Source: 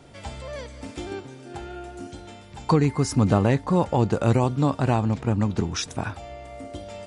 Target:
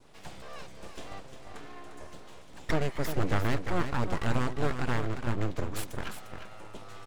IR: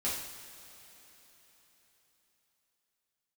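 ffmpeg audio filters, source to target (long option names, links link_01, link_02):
-af "adynamicequalizer=threshold=0.0126:dfrequency=1700:dqfactor=1.2:tfrequency=1700:tqfactor=1.2:attack=5:release=100:ratio=0.375:range=2:mode=boostabove:tftype=bell,aeval=exprs='abs(val(0))':channel_layout=same,aecho=1:1:351:0.376,volume=-6.5dB"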